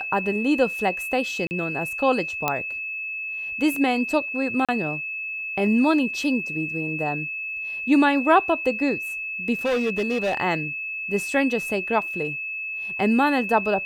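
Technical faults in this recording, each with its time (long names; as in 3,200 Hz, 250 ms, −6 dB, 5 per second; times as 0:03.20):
whistle 2,600 Hz −28 dBFS
0:01.47–0:01.51: drop-out 39 ms
0:02.48: click −7 dBFS
0:04.65–0:04.69: drop-out 36 ms
0:09.65–0:10.35: clipping −19 dBFS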